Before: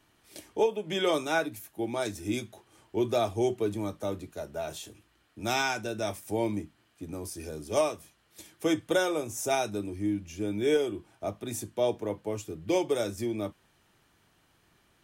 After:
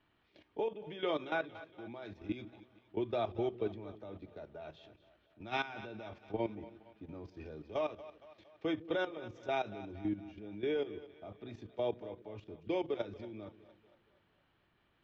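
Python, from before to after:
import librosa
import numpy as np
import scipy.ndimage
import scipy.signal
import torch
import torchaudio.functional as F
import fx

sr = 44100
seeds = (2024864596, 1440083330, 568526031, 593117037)

y = scipy.signal.sosfilt(scipy.signal.cheby2(4, 50, 8600.0, 'lowpass', fs=sr, output='sos'), x)
y = fx.level_steps(y, sr, step_db=14)
y = fx.echo_split(y, sr, split_hz=420.0, low_ms=155, high_ms=232, feedback_pct=52, wet_db=-15.5)
y = y * librosa.db_to_amplitude(-4.5)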